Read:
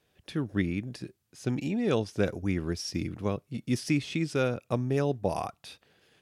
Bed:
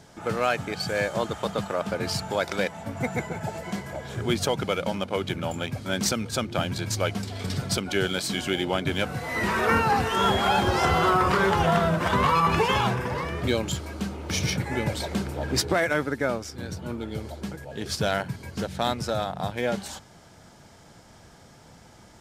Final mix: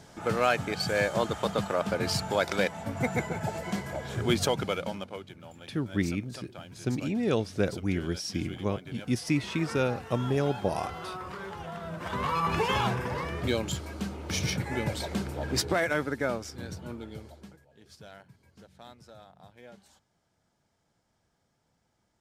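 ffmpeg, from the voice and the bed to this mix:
ffmpeg -i stem1.wav -i stem2.wav -filter_complex "[0:a]adelay=5400,volume=0dB[link_01];[1:a]volume=14dB,afade=type=out:start_time=4.37:duration=0.91:silence=0.133352,afade=type=in:start_time=11.79:duration=1.02:silence=0.188365,afade=type=out:start_time=16.54:duration=1.13:silence=0.1[link_02];[link_01][link_02]amix=inputs=2:normalize=0" out.wav

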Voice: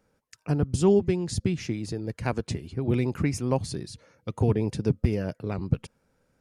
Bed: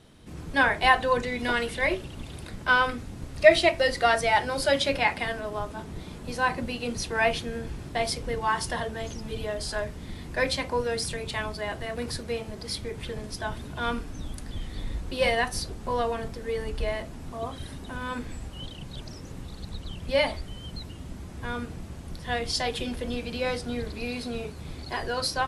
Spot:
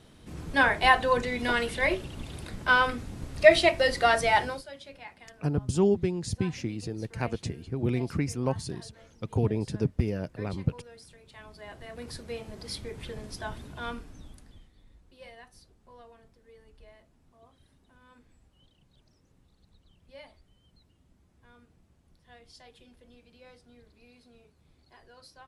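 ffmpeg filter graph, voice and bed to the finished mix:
ffmpeg -i stem1.wav -i stem2.wav -filter_complex "[0:a]adelay=4950,volume=-3dB[link_01];[1:a]volume=16.5dB,afade=type=out:start_time=4.43:duration=0.2:silence=0.0891251,afade=type=in:start_time=11.28:duration=1.34:silence=0.141254,afade=type=out:start_time=13.5:duration=1.22:silence=0.0944061[link_02];[link_01][link_02]amix=inputs=2:normalize=0" out.wav

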